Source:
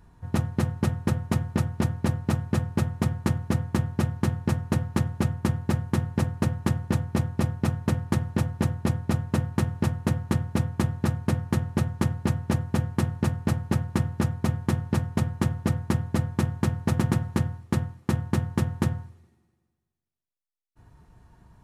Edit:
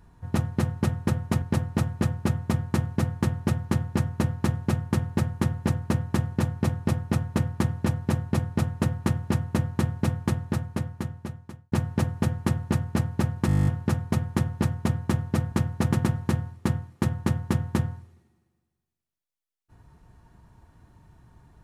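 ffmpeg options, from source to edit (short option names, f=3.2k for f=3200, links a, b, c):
-filter_complex "[0:a]asplit=14[a][b][c][d][e][f][g][h][i][j][k][l][m][n];[a]atrim=end=1.422[o];[b]atrim=start=1.938:end=12.24,asetpts=PTS-STARTPTS,afade=t=out:st=8.752:d=1.55[p];[c]atrim=start=12.24:end=14.012,asetpts=PTS-STARTPTS,afade=t=in:d=0.004:c=hsin[q];[d]atrim=start=13.988:end=14.012[r];[e]atrim=start=13.988:end=14.012[s];[f]atrim=start=13.988:end=14.012[t];[g]atrim=start=13.988:end=14.012[u];[h]atrim=start=13.988:end=14.012[v];[i]atrim=start=13.988:end=14.012[w];[j]atrim=start=13.988:end=14.012[x];[k]atrim=start=13.988:end=14.012[y];[l]atrim=start=13.988:end=14.012[z];[m]atrim=start=13.988:end=15.842[aa];[n]atrim=start=16.588[ab];[p][q]concat=n=2:v=0:a=1[ac];[o][ac]acrossfade=d=0.004:c1=hsin:c2=hsin[ad];[ad][r]acrossfade=d=0.004:c1=hsin:c2=hsin[ae];[ae][s]acrossfade=d=0.004:c1=hsin:c2=hsin[af];[af][t]acrossfade=d=0.004:c1=hsin:c2=hsin[ag];[ag][u]acrossfade=d=0.004:c1=hsin:c2=hsin[ah];[ah][v]acrossfade=d=0.004:c1=hsin:c2=hsin[ai];[ai][w]acrossfade=d=0.004:c1=hsin:c2=hsin[aj];[aj][x]acrossfade=d=0.004:c1=hsin:c2=hsin[ak];[ak][y]acrossfade=d=0.004:c1=hsin:c2=hsin[al];[al][z]acrossfade=d=0.004:c1=hsin:c2=hsin[am];[am][aa]acrossfade=d=0.004:c1=hsin:c2=hsin[an];[an][ab]acrossfade=d=0.004:c1=hsin:c2=hsin"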